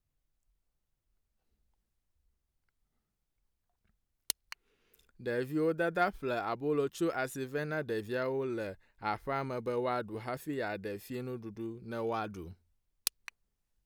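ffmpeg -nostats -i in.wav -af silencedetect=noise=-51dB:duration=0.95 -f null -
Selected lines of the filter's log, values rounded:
silence_start: 0.00
silence_end: 4.30 | silence_duration: 4.30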